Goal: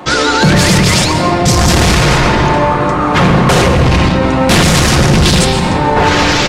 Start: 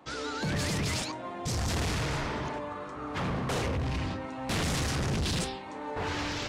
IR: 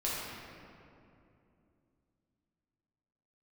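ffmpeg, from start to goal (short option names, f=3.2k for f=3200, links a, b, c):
-filter_complex "[0:a]aecho=1:1:5.6:0.31,asplit=2[a][b];[1:a]atrim=start_sample=2205,adelay=117[c];[b][c]afir=irnorm=-1:irlink=0,volume=-14.5dB[d];[a][d]amix=inputs=2:normalize=0,alimiter=level_in=26dB:limit=-1dB:release=50:level=0:latency=1,volume=-1dB"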